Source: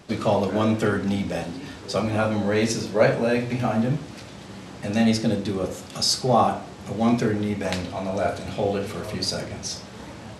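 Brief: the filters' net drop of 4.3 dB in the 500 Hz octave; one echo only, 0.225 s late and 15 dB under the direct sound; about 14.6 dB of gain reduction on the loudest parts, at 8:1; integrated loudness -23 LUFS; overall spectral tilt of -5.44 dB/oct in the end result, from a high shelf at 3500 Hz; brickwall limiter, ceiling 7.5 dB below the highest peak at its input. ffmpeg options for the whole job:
-af "equalizer=f=500:t=o:g=-5,highshelf=f=3.5k:g=-8.5,acompressor=threshold=-32dB:ratio=8,alimiter=level_in=3.5dB:limit=-24dB:level=0:latency=1,volume=-3.5dB,aecho=1:1:225:0.178,volume=14.5dB"

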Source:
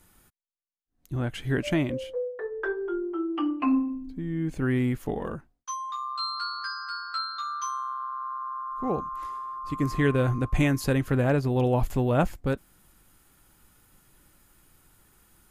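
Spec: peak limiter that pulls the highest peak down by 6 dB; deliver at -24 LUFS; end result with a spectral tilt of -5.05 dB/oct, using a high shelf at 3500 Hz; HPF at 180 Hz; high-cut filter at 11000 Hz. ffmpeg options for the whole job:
-af "highpass=180,lowpass=11k,highshelf=f=3.5k:g=-4,volume=7dB,alimiter=limit=-10.5dB:level=0:latency=1"

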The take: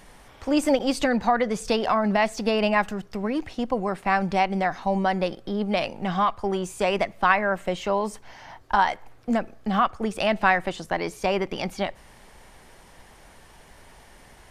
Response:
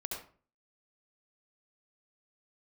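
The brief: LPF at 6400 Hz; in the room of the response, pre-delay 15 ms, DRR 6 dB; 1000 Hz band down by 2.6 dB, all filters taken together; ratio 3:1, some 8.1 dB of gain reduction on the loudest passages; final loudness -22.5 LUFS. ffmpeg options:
-filter_complex "[0:a]lowpass=6.4k,equalizer=f=1k:t=o:g=-3.5,acompressor=threshold=-28dB:ratio=3,asplit=2[a][b];[1:a]atrim=start_sample=2205,adelay=15[c];[b][c]afir=irnorm=-1:irlink=0,volume=-7dB[d];[a][d]amix=inputs=2:normalize=0,volume=8dB"

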